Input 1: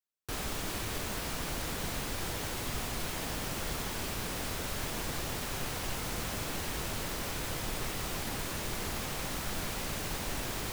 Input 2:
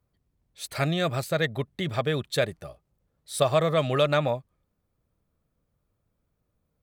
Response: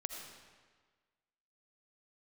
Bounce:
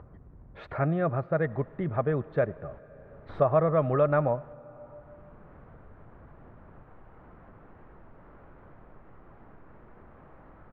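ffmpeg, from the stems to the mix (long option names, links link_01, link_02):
-filter_complex "[0:a]adelay=1150,volume=-17.5dB,asplit=2[link_01][link_02];[link_02]volume=-21dB[link_03];[1:a]volume=-1.5dB,asplit=3[link_04][link_05][link_06];[link_05]volume=-14.5dB[link_07];[link_06]apad=whole_len=523585[link_08];[link_01][link_08]sidechaingate=range=-33dB:threshold=-49dB:ratio=16:detection=peak[link_09];[2:a]atrim=start_sample=2205[link_10];[link_03][link_07]amix=inputs=2:normalize=0[link_11];[link_11][link_10]afir=irnorm=-1:irlink=0[link_12];[link_09][link_04][link_12]amix=inputs=3:normalize=0,lowpass=frequency=1500:width=0.5412,lowpass=frequency=1500:width=1.3066,acompressor=mode=upward:threshold=-31dB:ratio=2.5"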